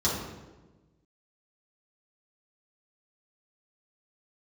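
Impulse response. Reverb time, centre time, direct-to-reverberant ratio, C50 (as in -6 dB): 1.2 s, 62 ms, -8.5 dB, 1.5 dB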